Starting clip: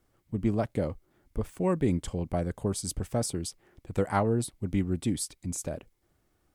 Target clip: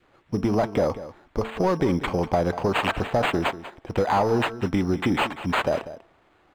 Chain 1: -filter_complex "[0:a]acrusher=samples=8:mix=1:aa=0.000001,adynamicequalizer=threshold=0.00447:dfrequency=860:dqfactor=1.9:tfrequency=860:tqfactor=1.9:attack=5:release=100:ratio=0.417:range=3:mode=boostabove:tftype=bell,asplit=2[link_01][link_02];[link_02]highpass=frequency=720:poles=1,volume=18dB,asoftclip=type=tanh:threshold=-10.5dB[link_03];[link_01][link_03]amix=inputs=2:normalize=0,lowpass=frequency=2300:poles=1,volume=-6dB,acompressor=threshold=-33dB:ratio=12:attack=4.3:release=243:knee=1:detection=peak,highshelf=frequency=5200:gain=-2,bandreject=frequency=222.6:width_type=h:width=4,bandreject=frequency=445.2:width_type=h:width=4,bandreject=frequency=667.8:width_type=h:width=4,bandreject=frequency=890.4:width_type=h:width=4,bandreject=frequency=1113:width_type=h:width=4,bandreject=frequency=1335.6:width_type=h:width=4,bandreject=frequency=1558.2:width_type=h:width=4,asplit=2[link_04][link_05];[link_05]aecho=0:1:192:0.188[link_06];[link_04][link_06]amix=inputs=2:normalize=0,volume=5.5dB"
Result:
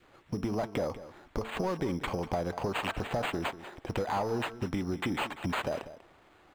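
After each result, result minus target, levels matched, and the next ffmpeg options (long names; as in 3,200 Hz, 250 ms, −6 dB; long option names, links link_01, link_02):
downward compressor: peak gain reduction +10 dB; 8,000 Hz band +4.5 dB
-filter_complex "[0:a]acrusher=samples=8:mix=1:aa=0.000001,adynamicequalizer=threshold=0.00447:dfrequency=860:dqfactor=1.9:tfrequency=860:tqfactor=1.9:attack=5:release=100:ratio=0.417:range=3:mode=boostabove:tftype=bell,asplit=2[link_01][link_02];[link_02]highpass=frequency=720:poles=1,volume=18dB,asoftclip=type=tanh:threshold=-10.5dB[link_03];[link_01][link_03]amix=inputs=2:normalize=0,lowpass=frequency=2300:poles=1,volume=-6dB,acompressor=threshold=-22dB:ratio=12:attack=4.3:release=243:knee=1:detection=peak,highshelf=frequency=5200:gain=-2,bandreject=frequency=222.6:width_type=h:width=4,bandreject=frequency=445.2:width_type=h:width=4,bandreject=frequency=667.8:width_type=h:width=4,bandreject=frequency=890.4:width_type=h:width=4,bandreject=frequency=1113:width_type=h:width=4,bandreject=frequency=1335.6:width_type=h:width=4,bandreject=frequency=1558.2:width_type=h:width=4,asplit=2[link_04][link_05];[link_05]aecho=0:1:192:0.188[link_06];[link_04][link_06]amix=inputs=2:normalize=0,volume=5.5dB"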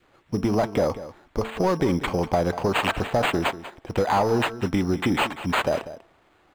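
8,000 Hz band +4.0 dB
-filter_complex "[0:a]acrusher=samples=8:mix=1:aa=0.000001,adynamicequalizer=threshold=0.00447:dfrequency=860:dqfactor=1.9:tfrequency=860:tqfactor=1.9:attack=5:release=100:ratio=0.417:range=3:mode=boostabove:tftype=bell,asplit=2[link_01][link_02];[link_02]highpass=frequency=720:poles=1,volume=18dB,asoftclip=type=tanh:threshold=-10.5dB[link_03];[link_01][link_03]amix=inputs=2:normalize=0,lowpass=frequency=2300:poles=1,volume=-6dB,acompressor=threshold=-22dB:ratio=12:attack=4.3:release=243:knee=1:detection=peak,highshelf=frequency=5200:gain=-8.5,bandreject=frequency=222.6:width_type=h:width=4,bandreject=frequency=445.2:width_type=h:width=4,bandreject=frequency=667.8:width_type=h:width=4,bandreject=frequency=890.4:width_type=h:width=4,bandreject=frequency=1113:width_type=h:width=4,bandreject=frequency=1335.6:width_type=h:width=4,bandreject=frequency=1558.2:width_type=h:width=4,asplit=2[link_04][link_05];[link_05]aecho=0:1:192:0.188[link_06];[link_04][link_06]amix=inputs=2:normalize=0,volume=5.5dB"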